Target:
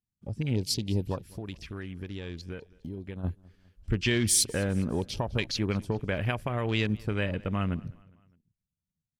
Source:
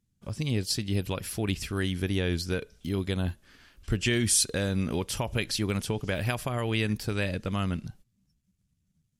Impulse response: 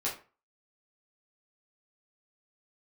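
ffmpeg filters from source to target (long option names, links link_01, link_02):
-filter_complex "[0:a]afwtdn=0.0112,asplit=3[link_01][link_02][link_03];[link_01]afade=type=out:start_time=1.17:duration=0.02[link_04];[link_02]acompressor=threshold=-37dB:ratio=4,afade=type=in:start_time=1.17:duration=0.02,afade=type=out:start_time=3.23:duration=0.02[link_05];[link_03]afade=type=in:start_time=3.23:duration=0.02[link_06];[link_04][link_05][link_06]amix=inputs=3:normalize=0,aecho=1:1:204|408|612:0.0631|0.0315|0.0158"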